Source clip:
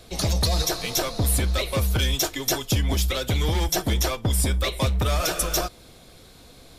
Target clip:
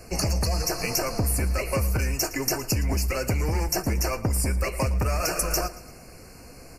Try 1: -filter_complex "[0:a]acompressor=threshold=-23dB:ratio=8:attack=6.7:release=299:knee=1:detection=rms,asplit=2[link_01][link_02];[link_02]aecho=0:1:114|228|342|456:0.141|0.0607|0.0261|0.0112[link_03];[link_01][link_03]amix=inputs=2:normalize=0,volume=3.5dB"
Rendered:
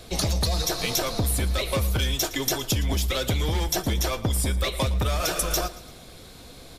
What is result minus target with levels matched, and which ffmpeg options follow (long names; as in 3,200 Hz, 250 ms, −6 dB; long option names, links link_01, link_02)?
4,000 Hz band +4.0 dB
-filter_complex "[0:a]acompressor=threshold=-23dB:ratio=8:attack=6.7:release=299:knee=1:detection=rms,asuperstop=centerf=3500:order=12:qfactor=2.3,asplit=2[link_01][link_02];[link_02]aecho=0:1:114|228|342|456:0.141|0.0607|0.0261|0.0112[link_03];[link_01][link_03]amix=inputs=2:normalize=0,volume=3.5dB"